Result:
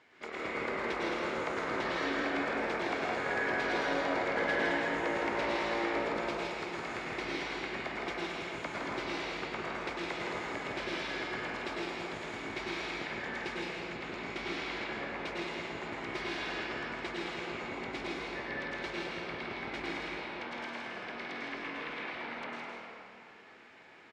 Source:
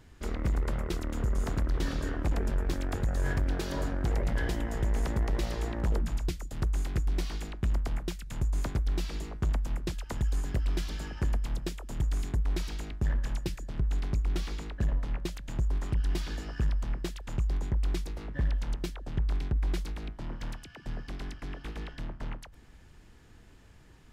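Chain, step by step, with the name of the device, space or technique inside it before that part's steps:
station announcement (band-pass filter 490–3,700 Hz; parametric band 2,200 Hz +9 dB 0.2 octaves; loudspeakers that aren't time-aligned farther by 56 metres −5 dB, 72 metres −10 dB; convolution reverb RT60 2.5 s, pre-delay 95 ms, DRR −6 dB)

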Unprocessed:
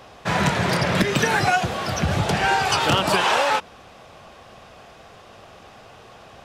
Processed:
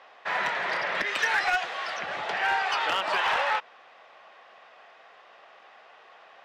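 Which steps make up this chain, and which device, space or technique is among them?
0:01.06–0:01.97: spectral tilt +2 dB per octave
megaphone (band-pass filter 690–3,200 Hz; parametric band 1,900 Hz +6 dB 0.24 octaves; hard clipping −13.5 dBFS, distortion −21 dB)
level −4.5 dB

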